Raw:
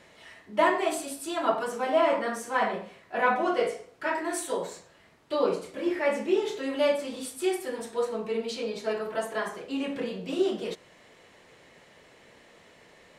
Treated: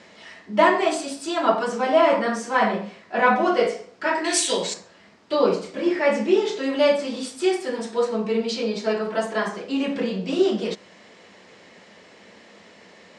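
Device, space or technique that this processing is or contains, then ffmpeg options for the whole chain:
car door speaker: -filter_complex "[0:a]asettb=1/sr,asplit=3[a][b][c];[a]atrim=end=4.244[d];[b]atrim=start=4.24:end=4.74,asetpts=PTS-STARTPTS,afade=t=in:d=0.004:c=qsin,afade=t=out:st=0.496:d=0.004:c=qsin,highshelf=f=1.9k:t=q:w=1.5:g=10.5[e];[c]atrim=start=4.736[f];[d][e]acrossfade=d=0.004:c1=hsin:c2=qsin[g];[g][f]acrossfade=d=0.004:c1=qsin:c2=hsin,highpass=98,equalizer=f=140:t=q:w=4:g=-10,equalizer=f=200:t=q:w=4:g=9,equalizer=f=5k:t=q:w=4:g=5,lowpass=f=7.8k:w=0.5412,lowpass=f=7.8k:w=1.3066,volume=6dB"

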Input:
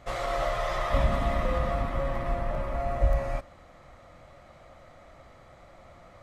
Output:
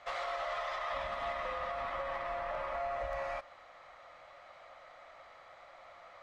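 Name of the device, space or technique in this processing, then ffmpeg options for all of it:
DJ mixer with the lows and highs turned down: -filter_complex "[0:a]acrossover=split=580 5600:gain=0.0708 1 0.141[a][b][c];[a][b][c]amix=inputs=3:normalize=0,alimiter=level_in=6dB:limit=-24dB:level=0:latency=1:release=171,volume=-6dB,volume=1.5dB"

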